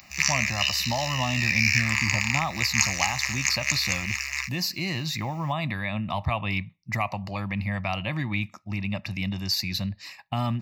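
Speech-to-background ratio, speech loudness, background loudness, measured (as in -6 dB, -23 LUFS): -4.0 dB, -29.0 LUFS, -25.0 LUFS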